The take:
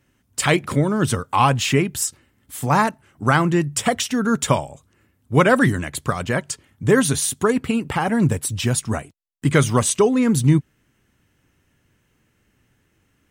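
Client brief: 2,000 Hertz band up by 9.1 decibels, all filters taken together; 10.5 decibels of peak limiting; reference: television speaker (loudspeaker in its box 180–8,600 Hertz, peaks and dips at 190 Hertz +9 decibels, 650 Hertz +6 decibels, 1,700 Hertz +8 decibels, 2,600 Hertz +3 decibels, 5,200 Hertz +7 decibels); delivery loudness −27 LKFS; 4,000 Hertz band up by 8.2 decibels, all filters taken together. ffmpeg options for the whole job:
ffmpeg -i in.wav -af "equalizer=frequency=2000:width_type=o:gain=3,equalizer=frequency=4000:width_type=o:gain=6.5,alimiter=limit=-11dB:level=0:latency=1,highpass=frequency=180:width=0.5412,highpass=frequency=180:width=1.3066,equalizer=frequency=190:width_type=q:width=4:gain=9,equalizer=frequency=650:width_type=q:width=4:gain=6,equalizer=frequency=1700:width_type=q:width=4:gain=8,equalizer=frequency=2600:width_type=q:width=4:gain=3,equalizer=frequency=5200:width_type=q:width=4:gain=7,lowpass=frequency=8600:width=0.5412,lowpass=frequency=8600:width=1.3066,volume=-7dB" out.wav

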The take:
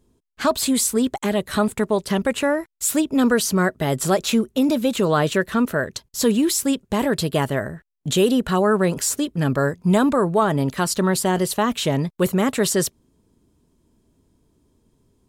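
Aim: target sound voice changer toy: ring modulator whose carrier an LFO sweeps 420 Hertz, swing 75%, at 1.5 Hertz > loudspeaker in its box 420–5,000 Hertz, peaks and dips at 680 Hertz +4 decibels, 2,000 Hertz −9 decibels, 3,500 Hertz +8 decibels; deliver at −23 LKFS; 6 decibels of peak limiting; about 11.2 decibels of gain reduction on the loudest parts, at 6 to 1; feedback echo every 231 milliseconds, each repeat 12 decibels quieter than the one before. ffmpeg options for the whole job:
ffmpeg -i in.wav -af "acompressor=threshold=-26dB:ratio=6,alimiter=limit=-21.5dB:level=0:latency=1,aecho=1:1:231|462|693:0.251|0.0628|0.0157,aeval=exprs='val(0)*sin(2*PI*420*n/s+420*0.75/1.5*sin(2*PI*1.5*n/s))':channel_layout=same,highpass=420,equalizer=frequency=680:width_type=q:width=4:gain=4,equalizer=frequency=2000:width_type=q:width=4:gain=-9,equalizer=frequency=3500:width_type=q:width=4:gain=8,lowpass=frequency=5000:width=0.5412,lowpass=frequency=5000:width=1.3066,volume=12.5dB" out.wav

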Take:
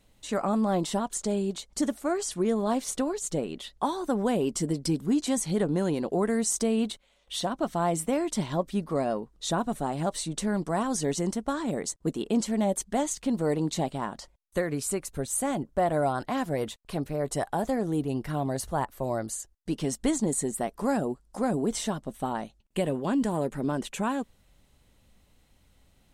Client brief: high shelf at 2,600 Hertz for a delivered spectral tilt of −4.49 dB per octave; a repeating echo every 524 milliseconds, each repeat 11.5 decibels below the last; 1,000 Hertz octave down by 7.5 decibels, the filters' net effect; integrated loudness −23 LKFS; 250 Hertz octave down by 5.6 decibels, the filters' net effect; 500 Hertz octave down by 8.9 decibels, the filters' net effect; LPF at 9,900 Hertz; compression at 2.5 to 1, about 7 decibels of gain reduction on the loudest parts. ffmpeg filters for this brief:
ffmpeg -i in.wav -af "lowpass=9900,equalizer=frequency=250:width_type=o:gain=-4.5,equalizer=frequency=500:width_type=o:gain=-8.5,equalizer=frequency=1000:width_type=o:gain=-5.5,highshelf=frequency=2600:gain=-4,acompressor=threshold=-38dB:ratio=2.5,aecho=1:1:524|1048|1572:0.266|0.0718|0.0194,volume=17dB" out.wav

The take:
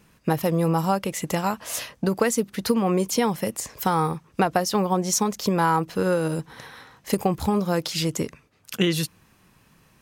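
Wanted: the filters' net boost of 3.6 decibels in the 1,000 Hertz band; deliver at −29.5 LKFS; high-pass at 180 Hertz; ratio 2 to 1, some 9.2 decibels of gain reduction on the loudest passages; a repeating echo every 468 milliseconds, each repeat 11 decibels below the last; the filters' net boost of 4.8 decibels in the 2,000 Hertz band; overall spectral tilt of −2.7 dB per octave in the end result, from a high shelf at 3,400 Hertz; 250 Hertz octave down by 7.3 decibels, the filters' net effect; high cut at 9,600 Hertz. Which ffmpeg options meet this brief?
ffmpeg -i in.wav -af "highpass=180,lowpass=9600,equalizer=frequency=250:width_type=o:gain=-9,equalizer=frequency=1000:width_type=o:gain=4,equalizer=frequency=2000:width_type=o:gain=4,highshelf=frequency=3400:gain=3.5,acompressor=threshold=-31dB:ratio=2,aecho=1:1:468|936|1404:0.282|0.0789|0.0221,volume=1.5dB" out.wav

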